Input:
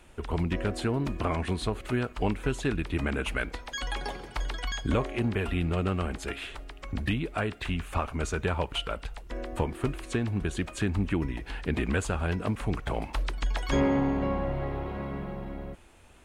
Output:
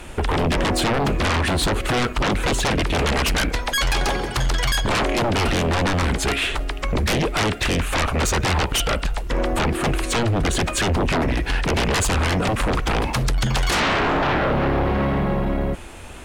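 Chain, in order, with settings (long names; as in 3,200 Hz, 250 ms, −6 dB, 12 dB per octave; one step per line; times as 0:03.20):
sine wavefolder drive 17 dB, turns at −13.5 dBFS
level −3 dB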